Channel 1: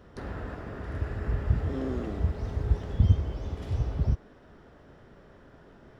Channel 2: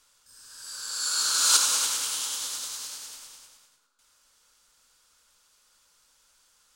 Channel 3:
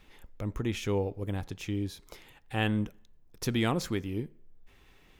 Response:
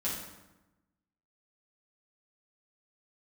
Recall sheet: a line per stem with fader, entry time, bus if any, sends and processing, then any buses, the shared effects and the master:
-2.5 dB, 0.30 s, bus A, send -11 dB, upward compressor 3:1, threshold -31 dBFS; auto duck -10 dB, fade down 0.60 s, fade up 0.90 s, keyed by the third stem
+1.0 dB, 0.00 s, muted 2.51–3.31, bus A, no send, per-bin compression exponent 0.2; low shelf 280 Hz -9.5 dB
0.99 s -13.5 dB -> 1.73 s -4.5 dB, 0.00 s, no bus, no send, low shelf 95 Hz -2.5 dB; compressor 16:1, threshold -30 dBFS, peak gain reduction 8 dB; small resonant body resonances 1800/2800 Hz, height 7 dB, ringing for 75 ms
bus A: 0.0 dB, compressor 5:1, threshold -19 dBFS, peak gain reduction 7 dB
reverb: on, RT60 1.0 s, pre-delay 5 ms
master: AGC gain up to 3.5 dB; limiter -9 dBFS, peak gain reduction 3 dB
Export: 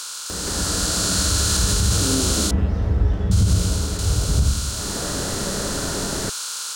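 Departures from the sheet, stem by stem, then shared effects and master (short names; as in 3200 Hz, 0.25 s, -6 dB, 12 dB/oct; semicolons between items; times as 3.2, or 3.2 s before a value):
stem 1 -2.5 dB -> +8.5 dB; stem 2 +1.0 dB -> -7.0 dB; stem 3 -13.5 dB -> -23.0 dB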